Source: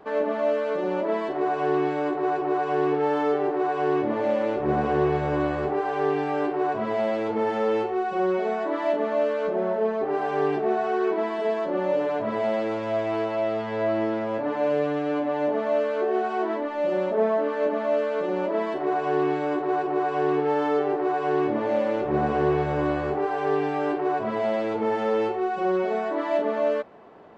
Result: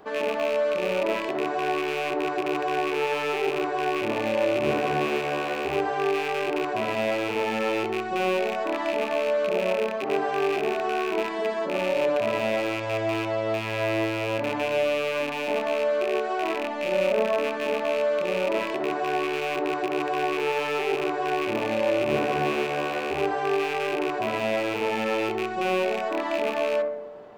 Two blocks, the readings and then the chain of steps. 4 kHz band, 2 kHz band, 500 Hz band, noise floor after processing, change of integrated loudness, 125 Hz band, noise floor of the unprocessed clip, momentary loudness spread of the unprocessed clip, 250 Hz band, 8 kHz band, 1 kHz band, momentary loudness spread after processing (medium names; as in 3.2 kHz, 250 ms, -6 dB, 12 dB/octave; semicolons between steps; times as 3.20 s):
+10.0 dB, +5.0 dB, -1.5 dB, -30 dBFS, -1.0 dB, -3.0 dB, -29 dBFS, 3 LU, -3.0 dB, no reading, -1.5 dB, 3 LU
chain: rattle on loud lows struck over -36 dBFS, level -23 dBFS; treble shelf 4.5 kHz +9 dB; de-hum 73.69 Hz, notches 31; on a send: filtered feedback delay 63 ms, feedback 77%, low-pass 1.2 kHz, level -9.5 dB